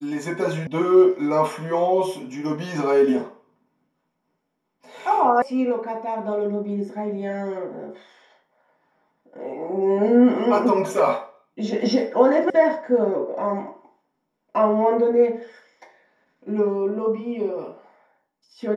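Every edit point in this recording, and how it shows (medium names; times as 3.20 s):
0.67 s: sound stops dead
5.42 s: sound stops dead
12.50 s: sound stops dead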